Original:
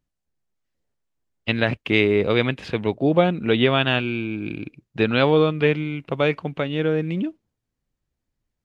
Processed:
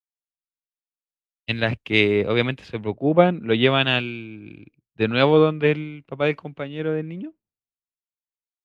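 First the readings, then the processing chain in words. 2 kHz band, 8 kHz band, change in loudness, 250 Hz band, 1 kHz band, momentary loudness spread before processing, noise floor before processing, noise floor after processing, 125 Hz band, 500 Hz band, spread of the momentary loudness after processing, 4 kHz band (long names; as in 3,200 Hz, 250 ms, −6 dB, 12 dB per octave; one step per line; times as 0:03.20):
0.0 dB, can't be measured, +0.5 dB, −1.5 dB, +0.5 dB, 11 LU, −82 dBFS, below −85 dBFS, −1.0 dB, 0.0 dB, 17 LU, +1.0 dB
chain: multiband upward and downward expander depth 100%
level −1 dB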